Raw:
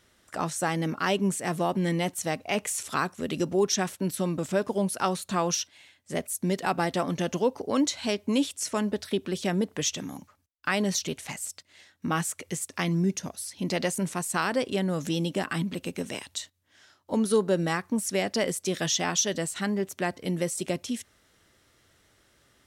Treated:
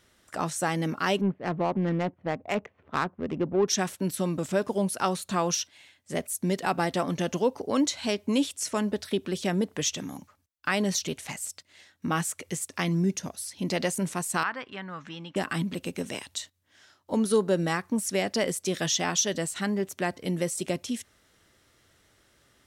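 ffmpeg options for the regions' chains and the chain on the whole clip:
-filter_complex "[0:a]asettb=1/sr,asplit=3[s0][s1][s2];[s0]atrim=end=1.214[s3];[s1]atrim=start=1.21:end=3.68,asetpts=PTS-STARTPTS,afade=t=in:d=0.004:c=qsin,afade=t=out:st=2.466:d=0.004:c=qsin,lowpass=f=3100:w=0.5412,lowpass=f=3100:w=1.3066,adynamicsmooth=sensitivity=2:basefreq=650[s4];[s2]atrim=start=3.676[s5];[s3][s4]acrossfade=d=0.004:c1=hsin:c2=qsin[s6];[s6][s5]acrossfade=d=0.004:c1=qsin:c2=hsin,asettb=1/sr,asplit=3[s7][s8][s9];[s7]atrim=end=14.434[s10];[s8]atrim=start=14.43:end=15.36,asetpts=PTS-STARTPTS,afade=t=in:d=0.004:c=qsin,afade=t=out:st=0.926:d=0.004:c=qsin,lowpass=2100,lowshelf=f=770:t=q:w=1.5:g=-12.5[s11];[s9]atrim=start=15.356[s12];[s10][s11]acrossfade=d=0.004:c1=hsin:c2=qsin[s13];[s13][s12]acrossfade=d=0.004:c1=qsin:c2=hsin"

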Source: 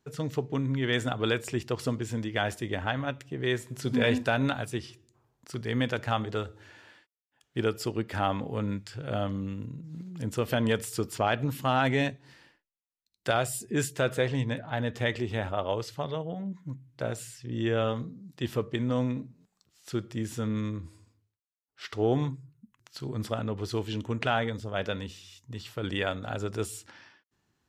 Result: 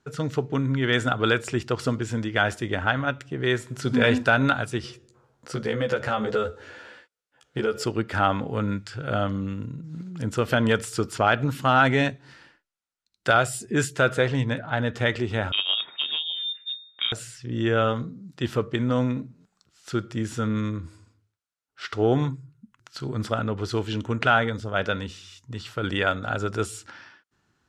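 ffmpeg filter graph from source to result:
-filter_complex "[0:a]asettb=1/sr,asplit=3[s0][s1][s2];[s0]atrim=end=4.824[s3];[s1]atrim=start=4.82:end=7.84,asetpts=PTS-STARTPTS,afade=t=in:d=0.004:c=qsin,afade=t=out:st=3.016:d=0.004:c=qsin,equalizer=f=500:w=4:g=11,acompressor=threshold=0.0447:ratio=6:attack=3.2:release=140:knee=1:detection=peak,asplit=2[s4][s5];[s5]adelay=14,volume=0.75[s6];[s4][s6]amix=inputs=2:normalize=0,atrim=end_sample=133182[s7];[s2]atrim=start=7.836[s8];[s3][s7]acrossfade=d=0.004:c1=hsin:c2=qsin[s9];[s9][s8]acrossfade=d=0.004:c1=qsin:c2=hsin,asettb=1/sr,asplit=3[s10][s11][s12];[s10]atrim=end=15.524[s13];[s11]atrim=start=15.52:end=17.12,asetpts=PTS-STARTPTS,afade=t=in:d=0.004:c=qsin,afade=t=out:st=1.596:d=0.004:c=qsin,lowpass=f=3200:t=q:w=0.5098,lowpass=f=3200:t=q:w=0.6013,lowpass=f=3200:t=q:w=0.9,lowpass=f=3200:t=q:w=2.563,afreqshift=-3800,highpass=f=160:p=1[s14];[s12]atrim=start=17.116[s15];[s13][s14]acrossfade=d=0.004:c1=hsin:c2=qsin[s16];[s16][s15]acrossfade=d=0.004:c1=qsin:c2=hsin,lowpass=9200,equalizer=f=1400:w=4.6:g=8.5,volume=1.68"

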